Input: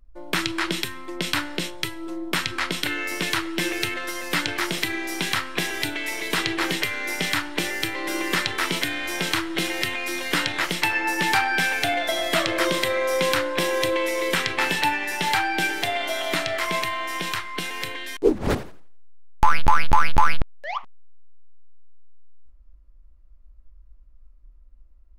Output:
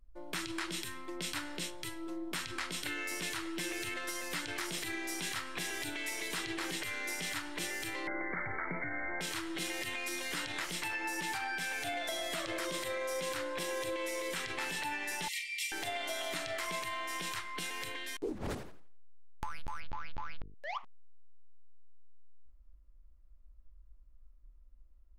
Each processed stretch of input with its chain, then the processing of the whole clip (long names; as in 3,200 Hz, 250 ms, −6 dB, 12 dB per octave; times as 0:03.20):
0:08.07–0:09.21: linear-phase brick-wall low-pass 2,300 Hz + comb filter 1.4 ms, depth 36% + envelope flattener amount 50%
0:15.28–0:15.72: linear-phase brick-wall high-pass 1,800 Hz + comb filter 3.7 ms, depth 80%
0:19.80–0:20.55: low-pass filter 4,800 Hz 24 dB per octave + mains-hum notches 50/100/150/200/250/300/350/400/450 Hz
whole clip: dynamic equaliser 8,200 Hz, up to +7 dB, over −44 dBFS, Q 0.8; brickwall limiter −14.5 dBFS; downward compressor 3 to 1, threshold −27 dBFS; level −8 dB